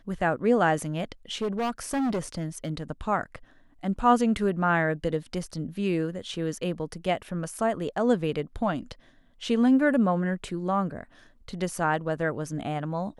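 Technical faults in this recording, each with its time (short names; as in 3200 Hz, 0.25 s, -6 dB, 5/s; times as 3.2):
1.41–2.83 clipped -24 dBFS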